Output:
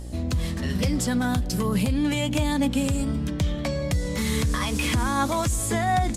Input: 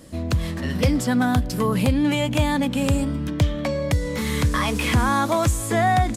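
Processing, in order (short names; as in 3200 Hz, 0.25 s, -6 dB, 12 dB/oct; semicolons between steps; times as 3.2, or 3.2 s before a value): low shelf 220 Hz +6 dB; buzz 60 Hz, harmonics 14, -31 dBFS -8 dB/oct; bell 7400 Hz +7 dB 2.3 oct; limiter -10.5 dBFS, peak gain reduction 6.5 dB; flange 0.4 Hz, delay 3.1 ms, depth 3 ms, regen +69%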